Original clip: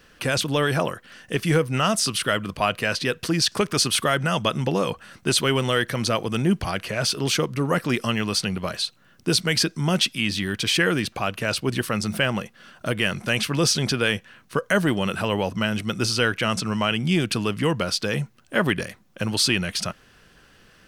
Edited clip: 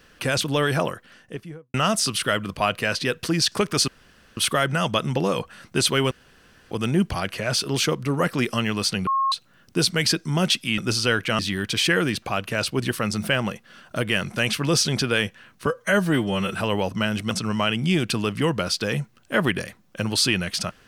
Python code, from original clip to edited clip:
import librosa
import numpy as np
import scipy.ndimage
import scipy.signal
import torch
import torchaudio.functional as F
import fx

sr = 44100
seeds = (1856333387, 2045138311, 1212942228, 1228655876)

y = fx.studio_fade_out(x, sr, start_s=0.83, length_s=0.91)
y = fx.edit(y, sr, fx.insert_room_tone(at_s=3.88, length_s=0.49),
    fx.room_tone_fill(start_s=5.62, length_s=0.6),
    fx.bleep(start_s=8.58, length_s=0.25, hz=1080.0, db=-18.5),
    fx.stretch_span(start_s=14.56, length_s=0.59, factor=1.5),
    fx.move(start_s=15.91, length_s=0.61, to_s=10.29), tone=tone)